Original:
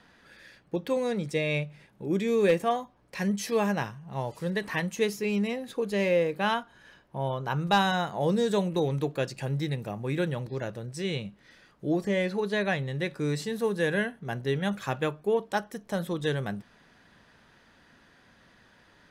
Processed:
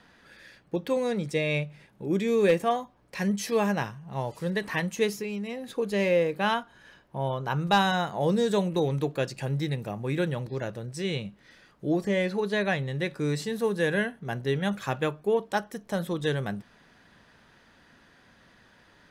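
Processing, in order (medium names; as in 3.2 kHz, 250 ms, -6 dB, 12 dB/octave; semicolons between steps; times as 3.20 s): 5.16–5.64 s: compression 10:1, threshold -31 dBFS, peak gain reduction 7.5 dB; trim +1 dB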